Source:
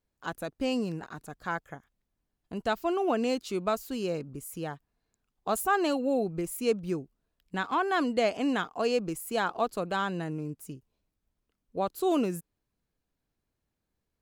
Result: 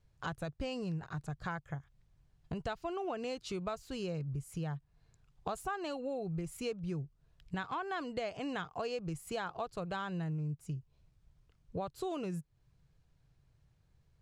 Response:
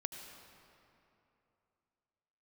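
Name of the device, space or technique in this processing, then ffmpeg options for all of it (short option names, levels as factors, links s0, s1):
jukebox: -af "lowpass=7200,lowshelf=f=180:t=q:w=3:g=8,acompressor=threshold=0.00562:ratio=4,volume=2.11"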